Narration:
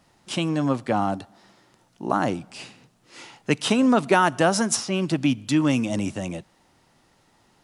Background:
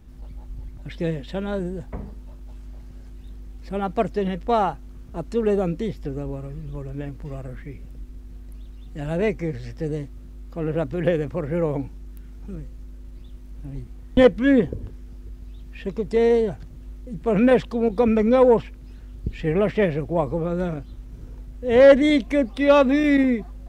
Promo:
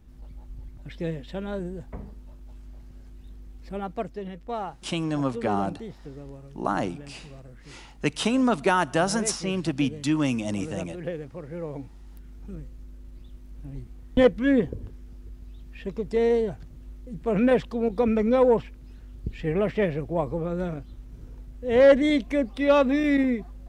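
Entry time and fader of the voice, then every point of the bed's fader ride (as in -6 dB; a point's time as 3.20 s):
4.55 s, -3.5 dB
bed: 3.68 s -5 dB
4.22 s -11.5 dB
11.61 s -11.5 dB
12.30 s -4 dB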